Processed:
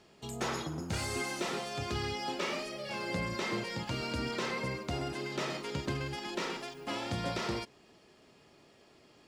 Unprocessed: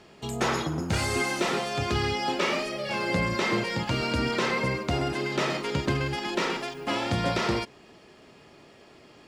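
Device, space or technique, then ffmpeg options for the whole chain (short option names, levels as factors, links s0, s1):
exciter from parts: -filter_complex "[0:a]asplit=2[s0][s1];[s1]highpass=3000,asoftclip=type=tanh:threshold=0.0251,volume=0.531[s2];[s0][s2]amix=inputs=2:normalize=0,volume=0.376"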